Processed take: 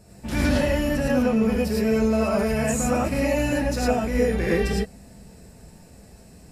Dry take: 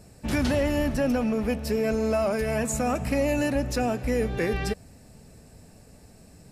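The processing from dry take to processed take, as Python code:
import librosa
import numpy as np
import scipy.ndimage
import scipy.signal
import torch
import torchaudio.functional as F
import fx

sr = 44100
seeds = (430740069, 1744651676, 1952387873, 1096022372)

y = fx.rev_gated(x, sr, seeds[0], gate_ms=130, shape='rising', drr_db=-5.0)
y = y * 10.0 ** (-2.5 / 20.0)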